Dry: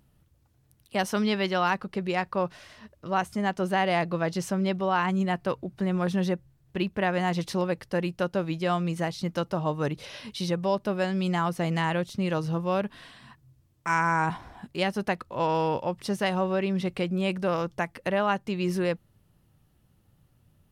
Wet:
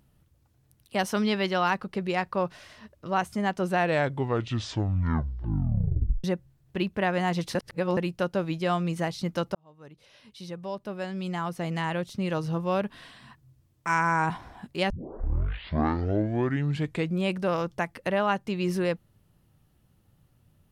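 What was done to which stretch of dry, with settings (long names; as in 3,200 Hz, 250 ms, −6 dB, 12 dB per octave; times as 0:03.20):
0:03.61: tape stop 2.63 s
0:07.55–0:07.97: reverse
0:09.55–0:12.74: fade in
0:14.90: tape start 2.33 s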